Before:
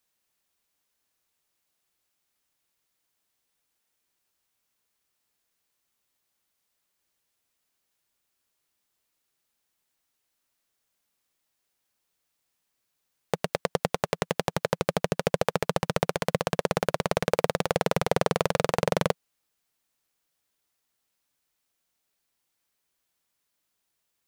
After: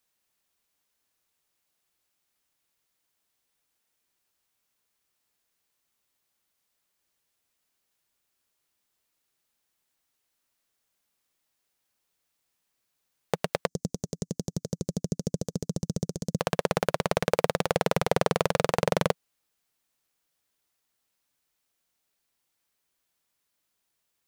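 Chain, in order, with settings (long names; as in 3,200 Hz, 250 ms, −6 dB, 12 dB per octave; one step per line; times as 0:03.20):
0:13.67–0:16.39: drawn EQ curve 130 Hz 0 dB, 270 Hz +3 dB, 900 Hz −24 dB, 2,500 Hz −26 dB, 6,300 Hz +3 dB, 11,000 Hz −9 dB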